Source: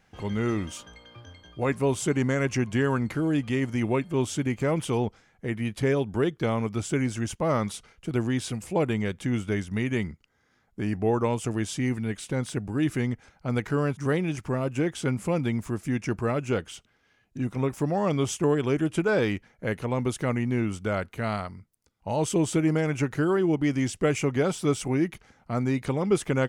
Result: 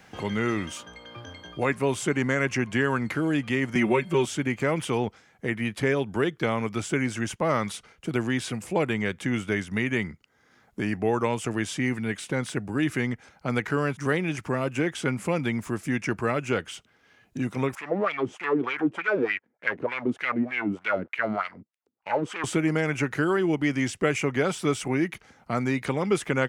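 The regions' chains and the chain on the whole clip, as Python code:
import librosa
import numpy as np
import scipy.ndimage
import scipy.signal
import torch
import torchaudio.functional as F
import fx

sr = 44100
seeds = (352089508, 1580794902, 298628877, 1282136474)

y = fx.chain(x, sr, fx.comb(ms=5.3, depth=0.87),
    fx.band_squash(depth_pct=70), at=(3.75, 4.26))
y = fx.chain(y, sr, fx.leveller(passes=3),
    fx.wah_lfo(hz=3.3, low_hz=240.0, high_hz=2500.0, q=3.1), at=(17.75, 22.44))
y = fx.highpass(y, sr, hz=130.0, slope=6)
y = fx.dynamic_eq(y, sr, hz=1900.0, q=0.92, threshold_db=-46.0, ratio=4.0, max_db=6)
y = fx.band_squash(y, sr, depth_pct=40)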